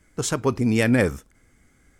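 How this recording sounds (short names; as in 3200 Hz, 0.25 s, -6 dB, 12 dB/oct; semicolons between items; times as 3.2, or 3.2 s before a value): noise floor -61 dBFS; spectral tilt -5.5 dB/oct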